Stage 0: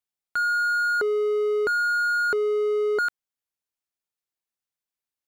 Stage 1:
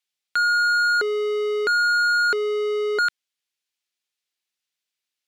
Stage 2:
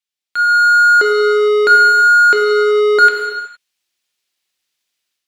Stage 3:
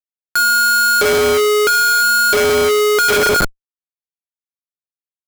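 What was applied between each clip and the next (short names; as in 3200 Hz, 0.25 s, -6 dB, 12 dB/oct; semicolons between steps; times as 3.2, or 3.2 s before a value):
weighting filter D
AGC gain up to 13 dB; non-linear reverb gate 0.49 s falling, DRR 2 dB; gain -4.5 dB
low-pass opened by the level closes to 1800 Hz, open at -6.5 dBFS; Schmitt trigger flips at -22.5 dBFS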